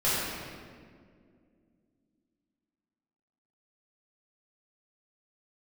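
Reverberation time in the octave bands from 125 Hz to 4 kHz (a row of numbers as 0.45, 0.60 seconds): 2.7, 3.5, 2.5, 1.7, 1.6, 1.3 seconds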